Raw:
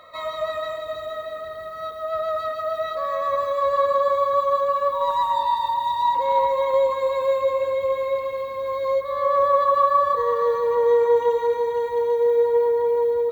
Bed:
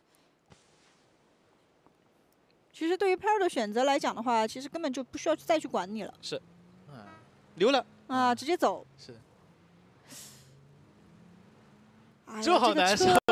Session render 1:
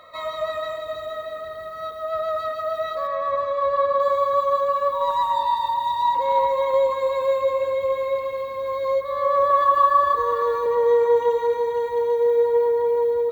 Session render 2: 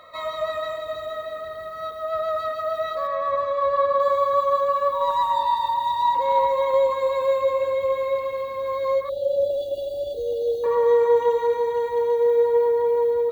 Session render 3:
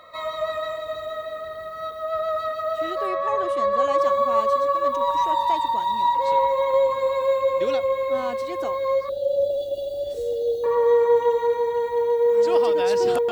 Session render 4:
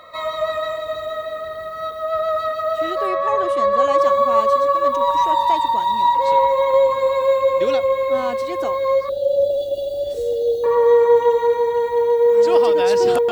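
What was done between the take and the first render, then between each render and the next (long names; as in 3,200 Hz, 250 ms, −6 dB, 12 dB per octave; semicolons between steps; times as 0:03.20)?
0:03.07–0:04.00: high-frequency loss of the air 140 metres; 0:09.50–0:10.66: comb filter 2.9 ms, depth 80%
0:09.09–0:10.64: linear-phase brick-wall band-stop 860–2,800 Hz
mix in bed −6.5 dB
level +4.5 dB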